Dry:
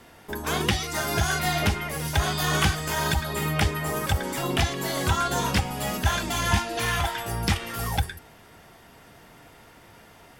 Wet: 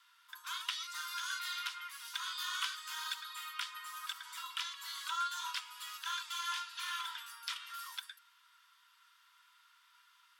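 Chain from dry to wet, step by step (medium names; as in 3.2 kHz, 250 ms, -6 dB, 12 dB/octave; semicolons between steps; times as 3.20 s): rippled Chebyshev high-pass 960 Hz, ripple 9 dB; trim -7.5 dB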